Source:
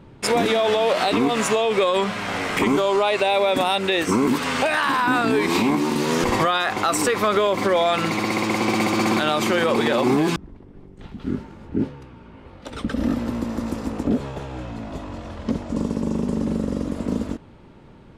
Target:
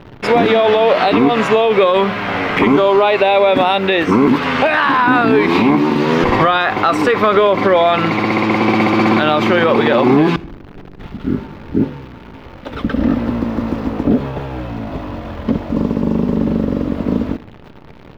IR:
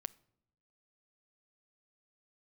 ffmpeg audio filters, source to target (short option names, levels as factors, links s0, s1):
-filter_complex "[0:a]acrusher=bits=8:dc=4:mix=0:aa=0.000001,asplit=2[s0][s1];[1:a]atrim=start_sample=2205,lowpass=3400[s2];[s1][s2]afir=irnorm=-1:irlink=0,volume=8.91[s3];[s0][s3]amix=inputs=2:normalize=0,volume=0.335"